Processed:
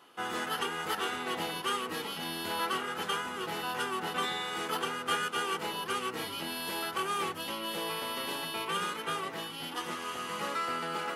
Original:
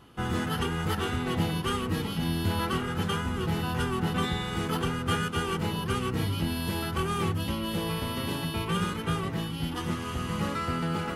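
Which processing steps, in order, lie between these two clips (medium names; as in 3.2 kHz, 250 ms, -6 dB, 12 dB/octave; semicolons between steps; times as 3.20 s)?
high-pass 480 Hz 12 dB/octave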